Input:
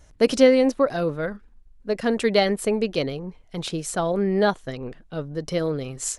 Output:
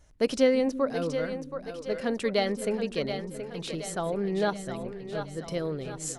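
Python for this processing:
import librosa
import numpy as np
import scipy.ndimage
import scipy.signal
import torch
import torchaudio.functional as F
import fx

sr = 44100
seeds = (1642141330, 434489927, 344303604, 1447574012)

y = fx.echo_split(x, sr, split_hz=320.0, low_ms=334, high_ms=725, feedback_pct=52, wet_db=-8.5)
y = F.gain(torch.from_numpy(y), -7.0).numpy()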